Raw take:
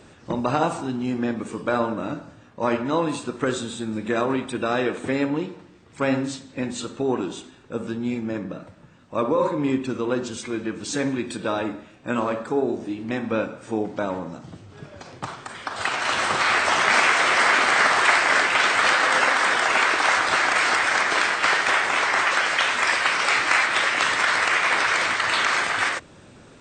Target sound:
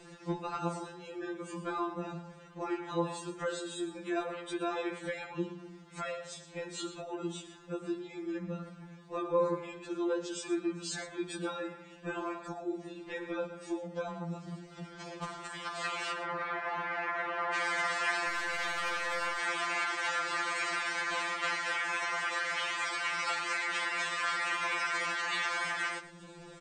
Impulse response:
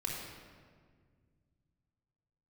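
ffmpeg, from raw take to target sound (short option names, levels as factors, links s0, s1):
-filter_complex "[0:a]acompressor=threshold=0.0141:ratio=2,asettb=1/sr,asplit=3[s0][s1][s2];[s0]atrim=end=16.124[s3];[s1]atrim=start=16.12:end=17.54,asetpts=PTS-STARTPTS,afade=t=in:d=0.004:c=qsin,afade=t=out:st=1.416:d=0.004:c=qsin,lowpass=1600[s4];[s2]atrim=start=17.536[s5];[s3][s4]acrossfade=d=0.004:c1=hsin:c2=qsin[s6];[s6][s5]acrossfade=d=0.004:c1=qsin:c2=hsin,asplit=2[s7][s8];[s8]aecho=0:1:117:0.2[s9];[s7][s9]amix=inputs=2:normalize=0,asettb=1/sr,asplit=3[s10][s11][s12];[s10]atrim=end=18.284[s13];[s11]atrim=start=18.28:end=19.39,asetpts=PTS-STARTPTS,afade=t=in:d=0.004:c=qsin,afade=t=out:st=1.106:d=0.004:c=qsin,aeval=exprs='(tanh(20*val(0)+0.25)-tanh(0.25))/20':c=same[s14];[s12]atrim=start=19.386[s15];[s13][s14]acrossfade=d=0.004:c1=hsin:c2=qsin[s16];[s16][s15]acrossfade=d=0.004:c1=qsin:c2=hsin,afftfilt=real='re*2.83*eq(mod(b,8),0)':imag='im*2.83*eq(mod(b,8),0)':win_size=2048:overlap=0.75"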